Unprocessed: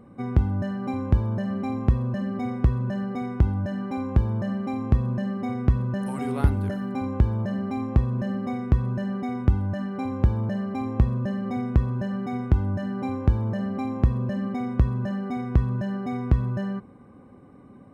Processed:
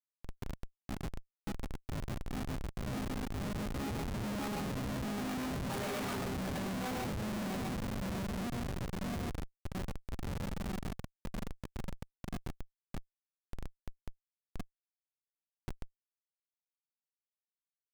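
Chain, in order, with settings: local time reversal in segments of 0.17 s; Doppler pass-by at 6.02, 15 m/s, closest 6.2 m; shoebox room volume 600 m³, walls furnished, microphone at 1.4 m; compressor 5:1, threshold -31 dBFS, peak gain reduction 15 dB; dynamic EQ 130 Hz, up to -5 dB, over -50 dBFS, Q 1.8; reverb removal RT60 1.4 s; HPF 93 Hz 24 dB/oct; tilt +2.5 dB/oct; notches 50/100/150/200/250 Hz; loudspeakers at several distances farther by 34 m -10 dB, 47 m -2 dB; modulation noise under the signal 25 dB; Schmitt trigger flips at -46.5 dBFS; gain +12 dB

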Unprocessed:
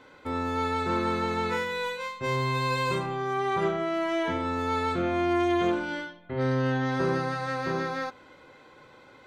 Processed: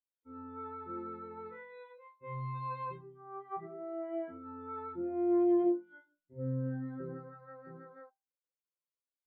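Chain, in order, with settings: de-hum 98.28 Hz, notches 18; spectral expander 2.5:1; gain -5.5 dB

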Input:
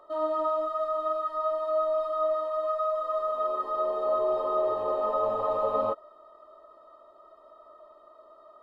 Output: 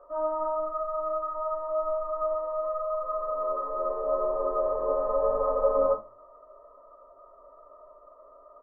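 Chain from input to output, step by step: LPF 1400 Hz 24 dB/oct; comb 1.9 ms, depth 44%; reverb RT60 0.30 s, pre-delay 4 ms, DRR -2 dB; gain -4 dB

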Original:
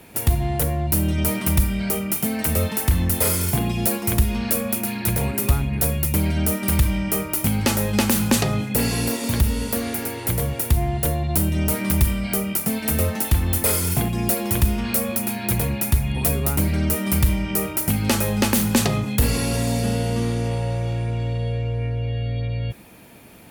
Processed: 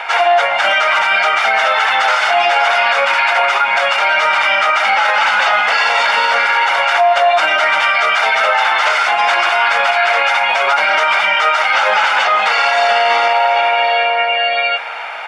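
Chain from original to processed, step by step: tracing distortion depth 0.11 ms; HPF 980 Hz 24 dB/oct; high shelf 3300 Hz -4 dB; notch 4100 Hz, Q 13; comb 1.4 ms, depth 48%; in parallel at -1 dB: negative-ratio compressor -35 dBFS, ratio -0.5; on the sum: plain phase-vocoder stretch 0.65×; tape spacing loss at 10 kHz 41 dB; speakerphone echo 0.14 s, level -29 dB; on a send at -16.5 dB: reverb RT60 3.4 s, pre-delay 98 ms; on the sum: maximiser +36 dB; gain -3.5 dB

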